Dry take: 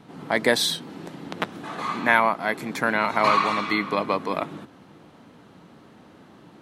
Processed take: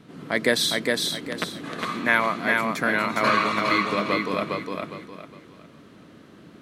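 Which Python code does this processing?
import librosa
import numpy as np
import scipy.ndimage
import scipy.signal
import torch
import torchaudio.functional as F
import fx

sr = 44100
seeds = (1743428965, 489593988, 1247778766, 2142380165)

p1 = fx.peak_eq(x, sr, hz=840.0, db=-11.0, octaves=0.48)
y = p1 + fx.echo_feedback(p1, sr, ms=409, feedback_pct=31, wet_db=-3.0, dry=0)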